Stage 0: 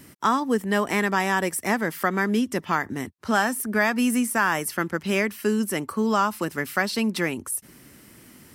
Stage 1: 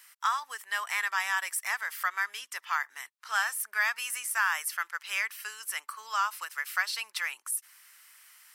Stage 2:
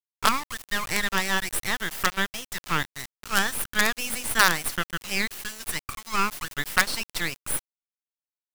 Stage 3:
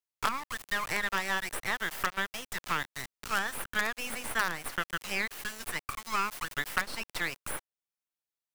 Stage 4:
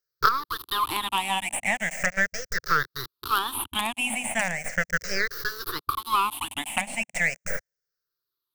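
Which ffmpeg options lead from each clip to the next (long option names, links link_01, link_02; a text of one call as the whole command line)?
ffmpeg -i in.wav -af "highpass=frequency=1100:width=0.5412,highpass=frequency=1100:width=1.3066,volume=-3dB" out.wav
ffmpeg -i in.wav -af "acrusher=bits=4:dc=4:mix=0:aa=0.000001,volume=8dB" out.wav
ffmpeg -i in.wav -filter_complex "[0:a]acrossover=split=420|2400[link_01][link_02][link_03];[link_01]acompressor=threshold=-40dB:ratio=4[link_04];[link_02]acompressor=threshold=-28dB:ratio=4[link_05];[link_03]acompressor=threshold=-40dB:ratio=4[link_06];[link_04][link_05][link_06]amix=inputs=3:normalize=0" out.wav
ffmpeg -i in.wav -af "afftfilt=real='re*pow(10,22/40*sin(2*PI*(0.57*log(max(b,1)*sr/1024/100)/log(2)-(-0.38)*(pts-256)/sr)))':imag='im*pow(10,22/40*sin(2*PI*(0.57*log(max(b,1)*sr/1024/100)/log(2)-(-0.38)*(pts-256)/sr)))':win_size=1024:overlap=0.75,volume=1.5dB" out.wav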